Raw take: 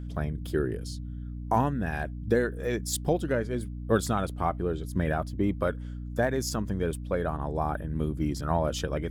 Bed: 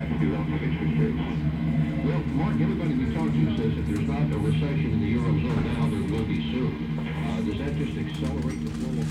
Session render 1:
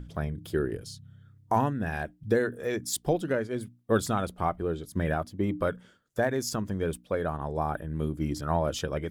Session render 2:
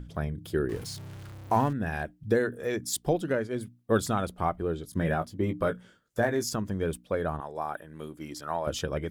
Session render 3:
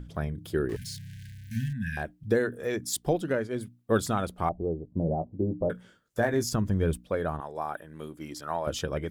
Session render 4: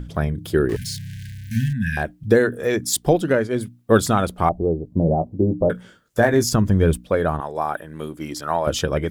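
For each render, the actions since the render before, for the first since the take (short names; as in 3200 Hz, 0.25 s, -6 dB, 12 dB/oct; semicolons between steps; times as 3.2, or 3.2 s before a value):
notches 60/120/180/240/300 Hz
0.69–1.73 zero-crossing step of -39.5 dBFS; 4.91–6.46 doubler 18 ms -7 dB; 7.4–8.67 HPF 750 Hz 6 dB/oct
0.76–1.97 brick-wall FIR band-stop 250–1500 Hz; 4.49–5.7 steep low-pass 840 Hz 48 dB/oct; 6.33–7.09 low shelf 140 Hz +12 dB
gain +9.5 dB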